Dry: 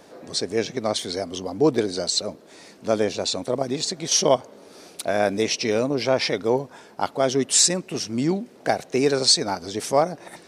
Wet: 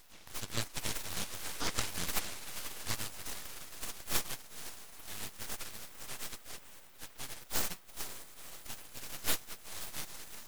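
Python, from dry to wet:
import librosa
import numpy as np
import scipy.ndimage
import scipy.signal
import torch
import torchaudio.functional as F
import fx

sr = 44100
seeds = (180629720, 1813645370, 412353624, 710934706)

p1 = fx.filter_sweep_highpass(x, sr, from_hz=390.0, to_hz=1700.0, start_s=2.56, end_s=3.45, q=0.72)
p2 = p1 + fx.echo_diffused(p1, sr, ms=488, feedback_pct=71, wet_db=-12, dry=0)
p3 = fx.spec_gate(p2, sr, threshold_db=-20, keep='weak')
p4 = np.abs(p3)
y = p4 * librosa.db_to_amplitude(5.0)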